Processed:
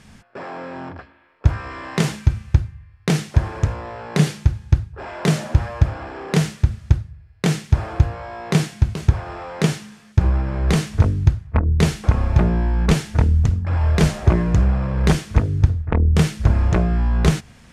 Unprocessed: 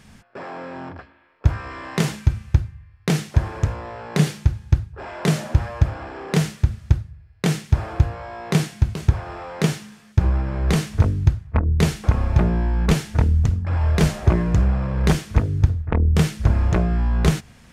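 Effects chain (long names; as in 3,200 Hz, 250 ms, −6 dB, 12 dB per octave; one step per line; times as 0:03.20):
low-pass filter 12,000 Hz 12 dB per octave
level +1.5 dB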